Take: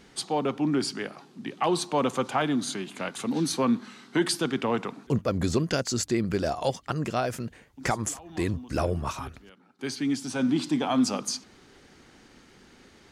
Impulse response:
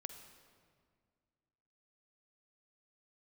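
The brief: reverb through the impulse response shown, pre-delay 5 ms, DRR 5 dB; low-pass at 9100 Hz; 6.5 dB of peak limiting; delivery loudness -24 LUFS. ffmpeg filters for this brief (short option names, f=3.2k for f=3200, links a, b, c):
-filter_complex "[0:a]lowpass=9.1k,alimiter=limit=-20dB:level=0:latency=1,asplit=2[a][b];[1:a]atrim=start_sample=2205,adelay=5[c];[b][c]afir=irnorm=-1:irlink=0,volume=-1.5dB[d];[a][d]amix=inputs=2:normalize=0,volume=6.5dB"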